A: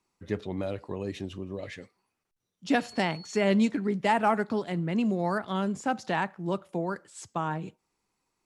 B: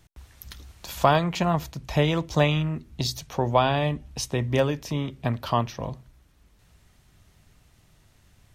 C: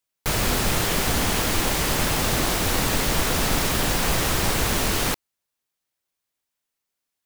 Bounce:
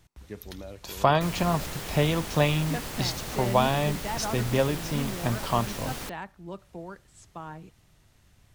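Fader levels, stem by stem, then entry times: −9.5, −2.0, −14.0 decibels; 0.00, 0.00, 0.95 seconds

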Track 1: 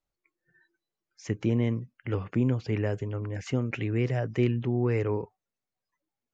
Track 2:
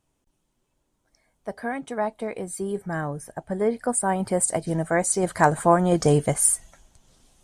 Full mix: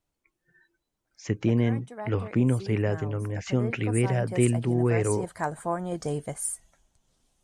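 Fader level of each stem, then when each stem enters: +2.5, −11.5 decibels; 0.00, 0.00 seconds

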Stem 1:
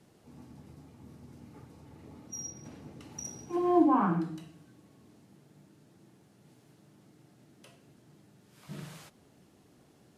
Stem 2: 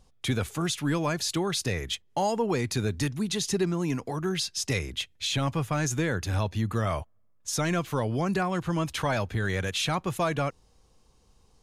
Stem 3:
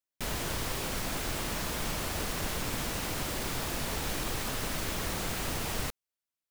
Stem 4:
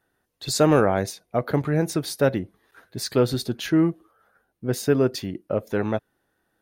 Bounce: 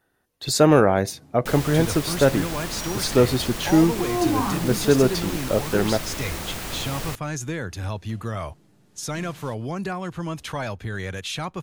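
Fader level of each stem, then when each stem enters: +1.0, −2.0, +2.0, +2.5 decibels; 0.45, 1.50, 1.25, 0.00 seconds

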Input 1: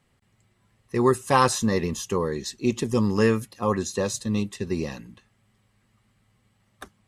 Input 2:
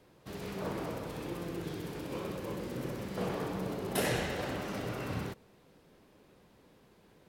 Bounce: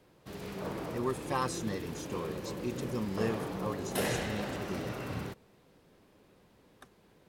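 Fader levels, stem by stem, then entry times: −13.5, −1.0 decibels; 0.00, 0.00 seconds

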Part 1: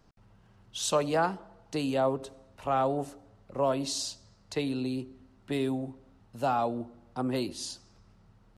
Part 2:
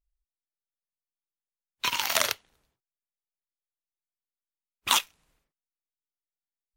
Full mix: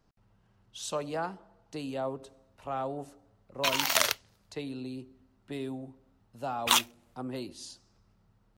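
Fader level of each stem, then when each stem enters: −7.0, −0.5 decibels; 0.00, 1.80 seconds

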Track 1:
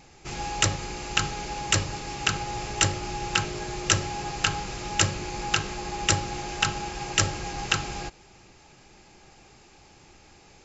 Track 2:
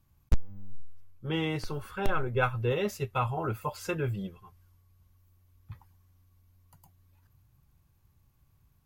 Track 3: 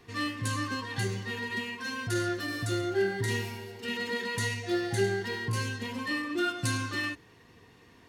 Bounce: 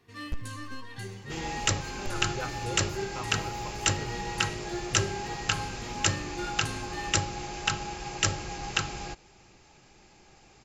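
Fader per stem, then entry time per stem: −3.5, −10.0, −8.5 decibels; 1.05, 0.00, 0.00 seconds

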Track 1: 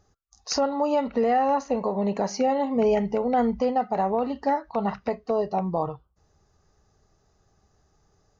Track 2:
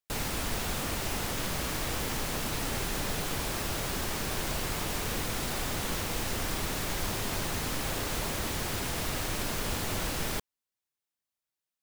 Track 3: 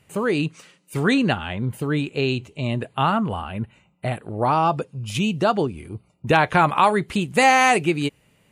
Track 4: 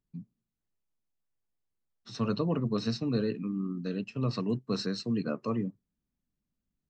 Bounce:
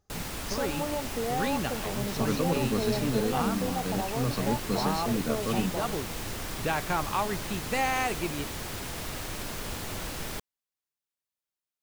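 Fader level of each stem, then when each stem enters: −10.0, −3.5, −12.5, +0.5 decibels; 0.00, 0.00, 0.35, 0.00 seconds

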